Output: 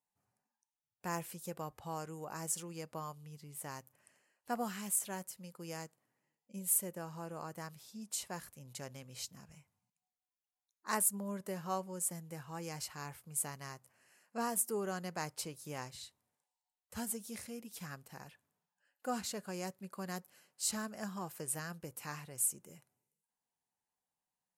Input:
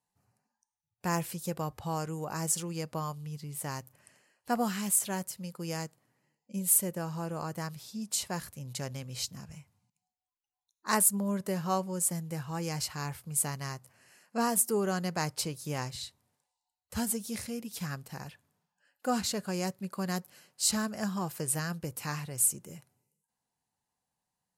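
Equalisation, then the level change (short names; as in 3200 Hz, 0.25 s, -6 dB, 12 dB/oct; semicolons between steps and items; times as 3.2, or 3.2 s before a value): bell 95 Hz -7 dB 2.1 oct; bell 4400 Hz -3.5 dB 0.81 oct; -6.5 dB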